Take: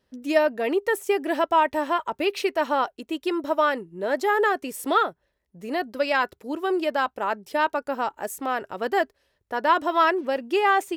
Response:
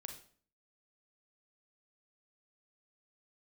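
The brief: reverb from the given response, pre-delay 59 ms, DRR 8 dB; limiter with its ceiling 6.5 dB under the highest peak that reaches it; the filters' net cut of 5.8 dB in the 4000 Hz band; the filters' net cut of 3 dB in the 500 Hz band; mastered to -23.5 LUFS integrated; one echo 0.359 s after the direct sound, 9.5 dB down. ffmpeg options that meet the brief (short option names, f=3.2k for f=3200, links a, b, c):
-filter_complex "[0:a]equalizer=f=500:t=o:g=-4,equalizer=f=4k:t=o:g=-8.5,alimiter=limit=-16dB:level=0:latency=1,aecho=1:1:359:0.335,asplit=2[a][b];[1:a]atrim=start_sample=2205,adelay=59[c];[b][c]afir=irnorm=-1:irlink=0,volume=-4dB[d];[a][d]amix=inputs=2:normalize=0,volume=3.5dB"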